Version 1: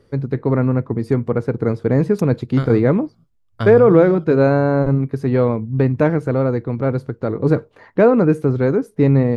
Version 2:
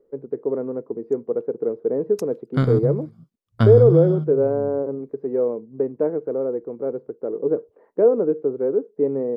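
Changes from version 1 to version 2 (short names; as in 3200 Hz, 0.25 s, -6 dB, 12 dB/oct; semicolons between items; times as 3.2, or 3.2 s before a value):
first voice: add ladder band-pass 500 Hz, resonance 55%; master: add bell 180 Hz +9 dB 1.8 oct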